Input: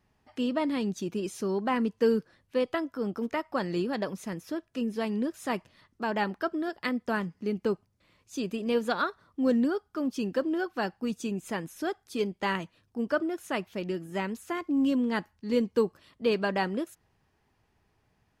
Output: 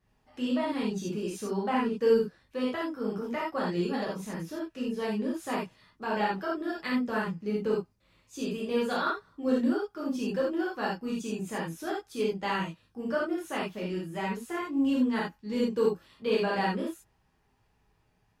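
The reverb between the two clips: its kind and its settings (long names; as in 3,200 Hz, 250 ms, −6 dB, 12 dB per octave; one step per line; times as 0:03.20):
reverb whose tail is shaped and stops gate 110 ms flat, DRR −6 dB
level −7 dB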